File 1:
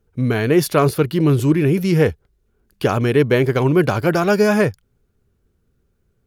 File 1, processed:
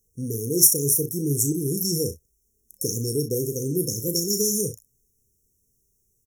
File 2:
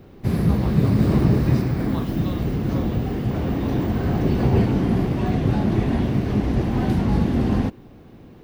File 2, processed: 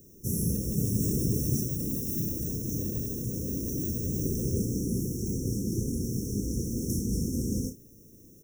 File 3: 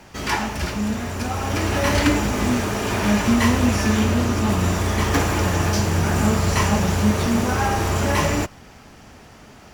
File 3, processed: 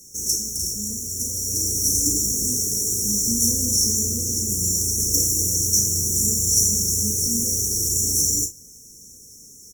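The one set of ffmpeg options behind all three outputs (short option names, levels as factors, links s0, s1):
-af "aecho=1:1:35|61:0.398|0.168,aexciter=amount=12.4:drive=4:freq=2300,afftfilt=real='re*(1-between(b*sr/4096,530,5400))':imag='im*(1-between(b*sr/4096,530,5400))':win_size=4096:overlap=0.75,volume=0.282"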